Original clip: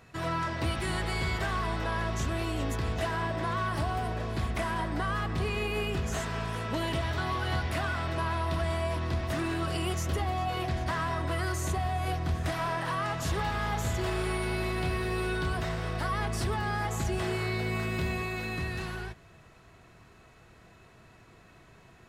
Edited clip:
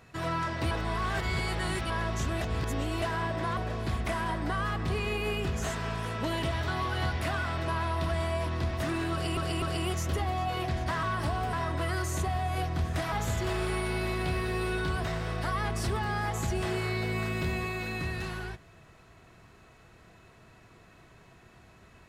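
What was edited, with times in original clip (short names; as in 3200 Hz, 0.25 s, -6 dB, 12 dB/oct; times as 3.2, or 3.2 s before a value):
0.71–1.9 reverse
2.41–3.02 reverse
3.57–4.07 move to 11.03
9.62–9.87 loop, 3 plays
12.62–13.69 cut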